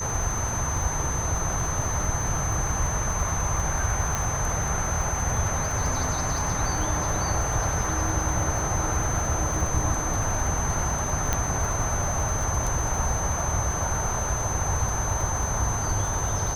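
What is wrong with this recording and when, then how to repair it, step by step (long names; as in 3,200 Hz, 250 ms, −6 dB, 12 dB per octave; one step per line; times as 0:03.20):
surface crackle 55 per second −30 dBFS
whistle 6,200 Hz −30 dBFS
0:04.15: click −11 dBFS
0:11.33: click −8 dBFS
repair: click removal
notch filter 6,200 Hz, Q 30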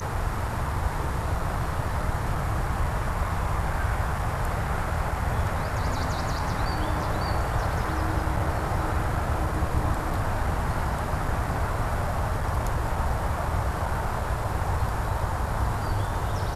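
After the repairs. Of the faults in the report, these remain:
0:04.15: click
0:11.33: click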